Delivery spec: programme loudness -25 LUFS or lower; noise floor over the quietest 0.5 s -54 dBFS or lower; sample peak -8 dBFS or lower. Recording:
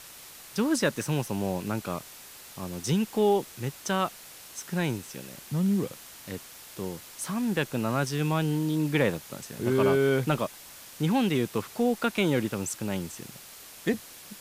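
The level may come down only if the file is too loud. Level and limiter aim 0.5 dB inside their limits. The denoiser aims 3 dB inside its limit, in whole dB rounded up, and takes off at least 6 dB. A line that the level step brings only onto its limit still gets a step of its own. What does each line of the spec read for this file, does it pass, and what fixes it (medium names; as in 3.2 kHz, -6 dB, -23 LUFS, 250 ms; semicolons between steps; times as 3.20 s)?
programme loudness -28.5 LUFS: pass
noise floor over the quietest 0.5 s -47 dBFS: fail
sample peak -11.0 dBFS: pass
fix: noise reduction 10 dB, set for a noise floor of -47 dBFS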